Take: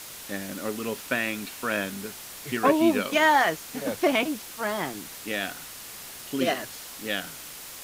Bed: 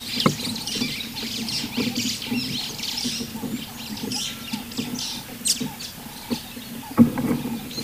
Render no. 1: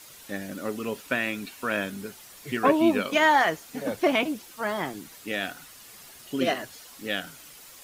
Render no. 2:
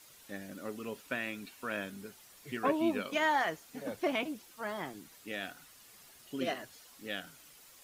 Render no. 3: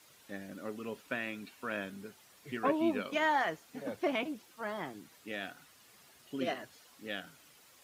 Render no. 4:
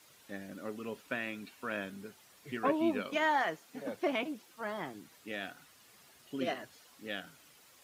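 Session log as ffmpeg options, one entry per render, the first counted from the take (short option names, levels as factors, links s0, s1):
-af "afftdn=nr=9:nf=-42"
-af "volume=0.335"
-af "highpass=72,highshelf=f=5000:g=-6.5"
-filter_complex "[0:a]asettb=1/sr,asplit=3[s0][s1][s2];[s0]atrim=end=3.164[s3];[s1]atrim=start=3.16:end=4.51,asetpts=PTS-STARTPTS,afade=t=in:d=0.004:c=qsin,afade=t=out:st=1.346:d=0.004:c=qsin,highpass=140[s4];[s2]atrim=start=4.506[s5];[s3][s4]acrossfade=d=0.004:c1=hsin:c2=qsin[s6];[s6][s5]acrossfade=d=0.004:c1=qsin:c2=hsin"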